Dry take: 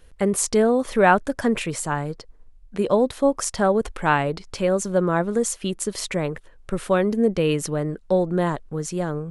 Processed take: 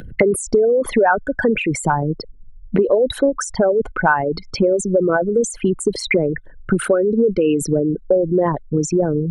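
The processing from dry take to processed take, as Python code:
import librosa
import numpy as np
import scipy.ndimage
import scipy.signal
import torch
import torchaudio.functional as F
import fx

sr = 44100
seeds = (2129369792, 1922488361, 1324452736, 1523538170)

y = fx.envelope_sharpen(x, sr, power=3.0)
y = fx.small_body(y, sr, hz=(1500.0, 2100.0, 3900.0), ring_ms=65, db=10)
y = fx.band_squash(y, sr, depth_pct=100)
y = F.gain(torch.from_numpy(y), 4.0).numpy()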